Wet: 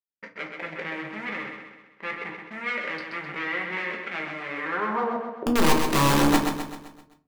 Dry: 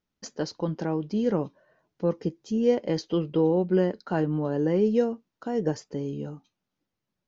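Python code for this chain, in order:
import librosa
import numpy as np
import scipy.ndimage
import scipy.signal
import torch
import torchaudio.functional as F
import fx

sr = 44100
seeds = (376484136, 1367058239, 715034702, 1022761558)

p1 = fx.wiener(x, sr, points=41)
p2 = scipy.signal.sosfilt(scipy.signal.butter(2, 3200.0, 'lowpass', fs=sr, output='sos'), p1)
p3 = fx.leveller(p2, sr, passes=5)
p4 = fx.over_compress(p3, sr, threshold_db=-23.0, ratio=-0.5)
p5 = p3 + F.gain(torch.from_numpy(p4), 1.0).numpy()
p6 = fx.filter_sweep_bandpass(p5, sr, from_hz=2100.0, to_hz=340.0, start_s=4.57, end_s=5.5, q=4.5)
p7 = (np.mod(10.0 ** (18.5 / 20.0) * p6 + 1.0, 2.0) - 1.0) / 10.0 ** (18.5 / 20.0)
p8 = p7 + fx.echo_feedback(p7, sr, ms=129, feedback_pct=49, wet_db=-6.0, dry=0)
y = fx.room_shoebox(p8, sr, seeds[0], volume_m3=130.0, walls='furnished', distance_m=1.2)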